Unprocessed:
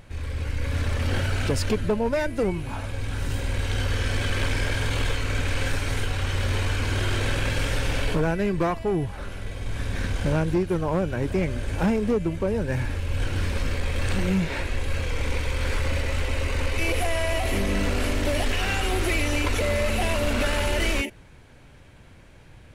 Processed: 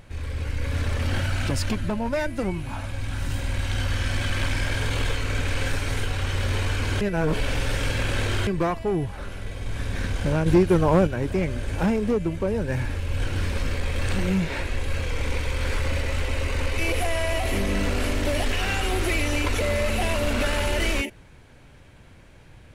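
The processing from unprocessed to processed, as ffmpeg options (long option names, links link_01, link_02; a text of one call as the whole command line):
ffmpeg -i in.wav -filter_complex "[0:a]asettb=1/sr,asplit=3[link_01][link_02][link_03];[link_01]atrim=end=1.084[link_04];[link_02]atrim=start=1.08:end=4.71,asetpts=PTS-STARTPTS,afade=type=in:duration=0.004:curve=qsin,afade=type=out:start_time=3.626:duration=0.004:curve=qsin,equalizer=frequency=440:width=6.1:gain=-13.5[link_05];[link_03]atrim=start=4.706[link_06];[link_04][link_05]acrossfade=duration=0.004:curve1=hsin:curve2=qsin[link_07];[link_07][link_06]acrossfade=duration=0.004:curve1=qsin:curve2=hsin,asplit=5[link_08][link_09][link_10][link_11][link_12];[link_08]atrim=end=7.012[link_13];[link_09]atrim=start=7.008:end=8.472,asetpts=PTS-STARTPTS,areverse[link_14];[link_10]atrim=start=8.468:end=10.462[link_15];[link_11]atrim=start=10.458:end=11.072,asetpts=PTS-STARTPTS,volume=6dB[link_16];[link_12]atrim=start=11.068[link_17];[link_13][link_14]acrossfade=duration=0.004:curve1=hsin:curve2=hsin[link_18];[link_18][link_15]acrossfade=duration=0.004:curve1=hsin:curve2=hsin[link_19];[link_19][link_16]acrossfade=duration=0.004:curve1=hsin:curve2=hsin[link_20];[link_20][link_17]acrossfade=duration=0.004:curve1=hsin:curve2=hsin" out.wav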